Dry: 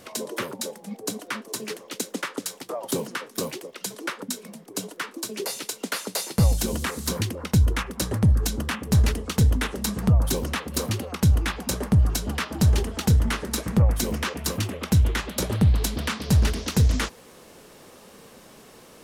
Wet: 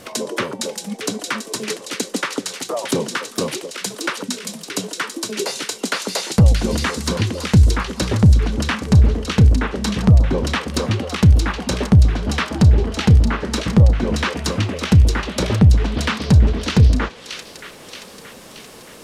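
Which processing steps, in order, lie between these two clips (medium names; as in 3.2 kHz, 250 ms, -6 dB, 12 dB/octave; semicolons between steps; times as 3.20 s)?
low-pass that closes with the level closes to 630 Hz, closed at -15 dBFS; de-hum 383.6 Hz, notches 33; vibrato 6 Hz 9.5 cents; feedback echo behind a high-pass 626 ms, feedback 55%, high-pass 2.4 kHz, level -3.5 dB; trim +7.5 dB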